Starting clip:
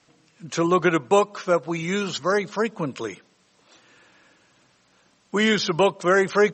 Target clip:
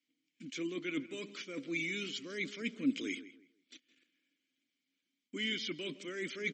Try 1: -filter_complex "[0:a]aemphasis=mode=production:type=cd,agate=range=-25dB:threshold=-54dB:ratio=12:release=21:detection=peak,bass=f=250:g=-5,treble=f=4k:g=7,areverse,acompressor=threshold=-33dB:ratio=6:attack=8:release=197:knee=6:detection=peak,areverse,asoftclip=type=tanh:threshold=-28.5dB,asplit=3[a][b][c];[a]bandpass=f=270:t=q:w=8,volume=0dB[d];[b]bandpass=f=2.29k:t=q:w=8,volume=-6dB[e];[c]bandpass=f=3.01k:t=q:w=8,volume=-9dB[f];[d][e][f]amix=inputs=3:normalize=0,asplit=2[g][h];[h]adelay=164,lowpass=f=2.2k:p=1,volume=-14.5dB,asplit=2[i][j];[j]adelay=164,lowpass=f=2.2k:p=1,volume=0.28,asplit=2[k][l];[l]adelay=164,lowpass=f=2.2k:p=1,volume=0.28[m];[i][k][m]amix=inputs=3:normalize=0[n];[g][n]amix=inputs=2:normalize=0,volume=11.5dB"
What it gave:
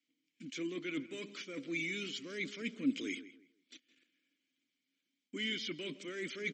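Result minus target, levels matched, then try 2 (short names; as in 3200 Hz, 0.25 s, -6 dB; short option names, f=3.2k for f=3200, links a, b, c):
soft clip: distortion +11 dB
-filter_complex "[0:a]aemphasis=mode=production:type=cd,agate=range=-25dB:threshold=-54dB:ratio=12:release=21:detection=peak,bass=f=250:g=-5,treble=f=4k:g=7,areverse,acompressor=threshold=-33dB:ratio=6:attack=8:release=197:knee=6:detection=peak,areverse,asoftclip=type=tanh:threshold=-21.5dB,asplit=3[a][b][c];[a]bandpass=f=270:t=q:w=8,volume=0dB[d];[b]bandpass=f=2.29k:t=q:w=8,volume=-6dB[e];[c]bandpass=f=3.01k:t=q:w=8,volume=-9dB[f];[d][e][f]amix=inputs=3:normalize=0,asplit=2[g][h];[h]adelay=164,lowpass=f=2.2k:p=1,volume=-14.5dB,asplit=2[i][j];[j]adelay=164,lowpass=f=2.2k:p=1,volume=0.28,asplit=2[k][l];[l]adelay=164,lowpass=f=2.2k:p=1,volume=0.28[m];[i][k][m]amix=inputs=3:normalize=0[n];[g][n]amix=inputs=2:normalize=0,volume=11.5dB"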